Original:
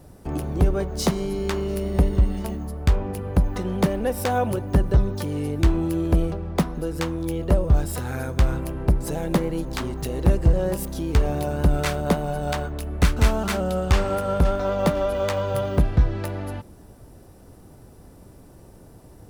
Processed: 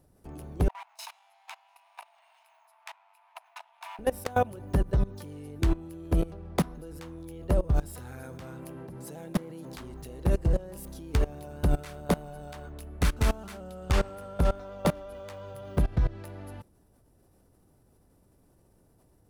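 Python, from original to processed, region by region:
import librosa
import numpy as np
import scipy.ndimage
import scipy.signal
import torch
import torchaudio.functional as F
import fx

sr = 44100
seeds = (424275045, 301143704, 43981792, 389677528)

y = fx.chain(x, sr, fx.lower_of_two(delay_ms=0.77),
    fx.cheby_ripple_highpass(hz=650.0, ripple_db=9),
    fx.high_shelf(hz=2100.0, db=-3.0), at=(0.68, 3.99))
y = fx.chain(y, sr, fx.highpass(hz=110.0, slope=24),
    fx.clip_hard(threshold_db=-18.5), at=(8.23, 9.76))
y = fx.peak_eq(y, sr, hz=11000.0, db=4.5, octaves=0.42)
y = fx.level_steps(y, sr, step_db=21)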